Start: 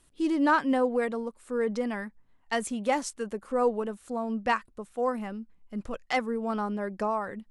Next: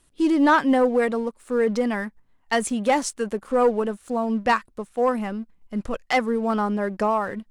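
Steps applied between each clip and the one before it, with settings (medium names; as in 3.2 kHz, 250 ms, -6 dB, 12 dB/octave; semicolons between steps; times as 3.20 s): waveshaping leveller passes 1; trim +3.5 dB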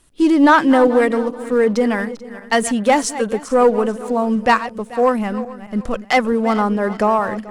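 backward echo that repeats 218 ms, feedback 51%, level -13.5 dB; trim +6 dB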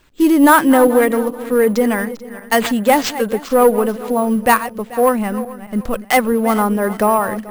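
careless resampling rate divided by 4×, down none, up hold; trim +1.5 dB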